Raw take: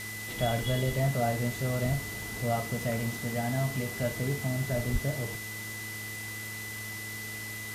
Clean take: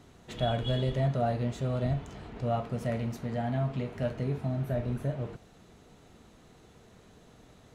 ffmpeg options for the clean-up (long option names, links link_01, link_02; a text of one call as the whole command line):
ffmpeg -i in.wav -filter_complex "[0:a]bandreject=frequency=107.6:width_type=h:width=4,bandreject=frequency=215.2:width_type=h:width=4,bandreject=frequency=322.8:width_type=h:width=4,bandreject=frequency=430.4:width_type=h:width=4,bandreject=frequency=2000:width=30,asplit=3[link_01][link_02][link_03];[link_01]afade=type=out:start_time=4.92:duration=0.02[link_04];[link_02]highpass=frequency=140:width=0.5412,highpass=frequency=140:width=1.3066,afade=type=in:start_time=4.92:duration=0.02,afade=type=out:start_time=5.04:duration=0.02[link_05];[link_03]afade=type=in:start_time=5.04:duration=0.02[link_06];[link_04][link_05][link_06]amix=inputs=3:normalize=0,afwtdn=0.0079" out.wav